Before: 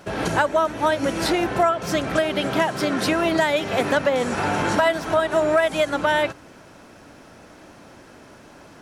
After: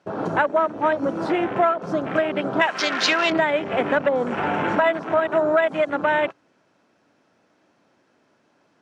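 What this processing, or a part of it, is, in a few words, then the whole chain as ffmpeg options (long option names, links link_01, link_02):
over-cleaned archive recording: -filter_complex "[0:a]asettb=1/sr,asplit=3[link_01][link_02][link_03];[link_01]atrim=end=2.614[link_04];[link_02]atrim=start=2.61:end=3.3,asetpts=PTS-STARTPTS,afade=type=in:duration=0.004:curve=qsin,afade=type=out:start_time=0.686:duration=0.004:curve=qsin,tiltshelf=frequency=780:gain=-9.5[link_05];[link_03]atrim=start=3.296[link_06];[link_04][link_05]acrossfade=duration=0.004:curve1=hsin:curve2=qsin[link_07];[link_07][link_06]acrossfade=duration=0.004:curve1=qsin:curve2=hsin,highpass=150,lowpass=6400,afwtdn=0.0447"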